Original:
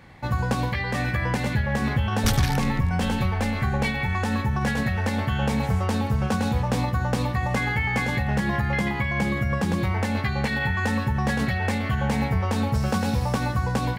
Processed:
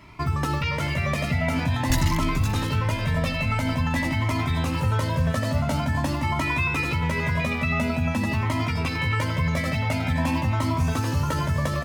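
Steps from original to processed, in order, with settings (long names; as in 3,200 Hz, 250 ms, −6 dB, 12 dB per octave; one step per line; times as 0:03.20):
multi-tap delay 510/612 ms −15.5/−10 dB
change of speed 1.18×
in parallel at −2.5 dB: brickwall limiter −19 dBFS, peak gain reduction 8 dB
on the sum: flanger whose copies keep moving one way rising 0.47 Hz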